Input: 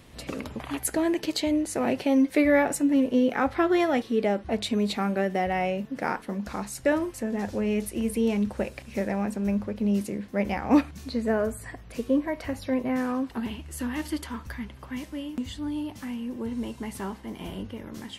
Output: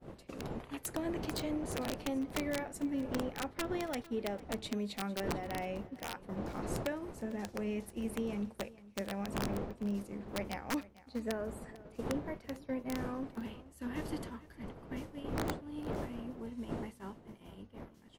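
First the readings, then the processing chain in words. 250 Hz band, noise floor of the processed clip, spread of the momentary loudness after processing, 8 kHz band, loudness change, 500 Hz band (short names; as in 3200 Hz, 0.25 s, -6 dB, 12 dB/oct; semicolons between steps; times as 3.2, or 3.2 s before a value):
-12.5 dB, -59 dBFS, 9 LU, -10.0 dB, -12.0 dB, -12.0 dB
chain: wind noise 440 Hz -31 dBFS; compressor 8:1, threshold -25 dBFS, peak gain reduction 11.5 dB; wrapped overs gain 19 dB; expander -26 dBFS; echo 0.451 s -19 dB; gain -6.5 dB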